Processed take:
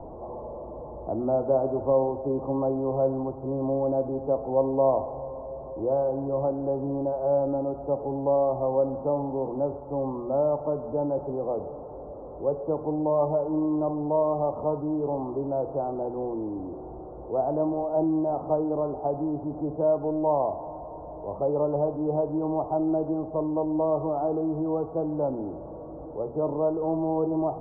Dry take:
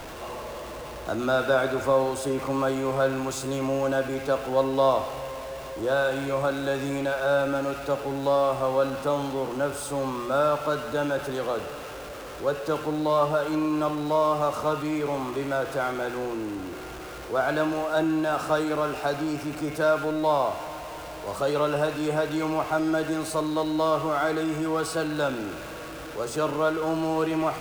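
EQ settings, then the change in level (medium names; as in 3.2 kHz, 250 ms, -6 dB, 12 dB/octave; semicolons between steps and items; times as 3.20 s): steep low-pass 920 Hz 48 dB/octave; 0.0 dB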